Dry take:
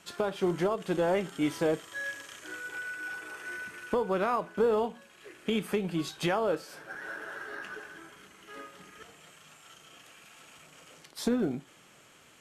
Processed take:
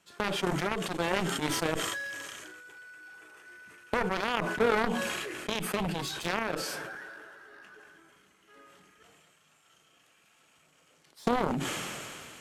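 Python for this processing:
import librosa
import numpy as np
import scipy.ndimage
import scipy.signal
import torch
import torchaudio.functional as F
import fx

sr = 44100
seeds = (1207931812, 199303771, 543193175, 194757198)

y = fx.cheby_harmonics(x, sr, harmonics=(3,), levels_db=(-8,), full_scale_db=-17.5)
y = fx.sustainer(y, sr, db_per_s=23.0)
y = y * 10.0 ** (3.5 / 20.0)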